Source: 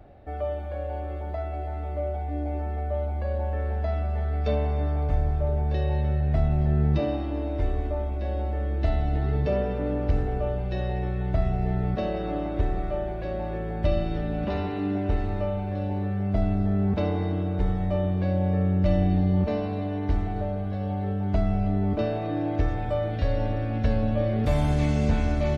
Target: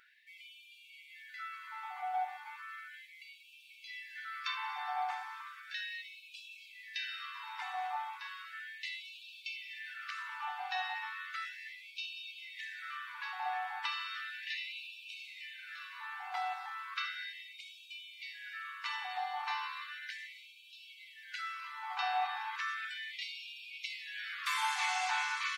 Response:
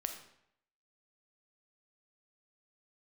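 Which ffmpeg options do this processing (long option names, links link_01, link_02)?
-af "afftfilt=real='re*gte(b*sr/1024,720*pow(2300/720,0.5+0.5*sin(2*PI*0.35*pts/sr)))':imag='im*gte(b*sr/1024,720*pow(2300/720,0.5+0.5*sin(2*PI*0.35*pts/sr)))':win_size=1024:overlap=0.75,volume=5.5dB"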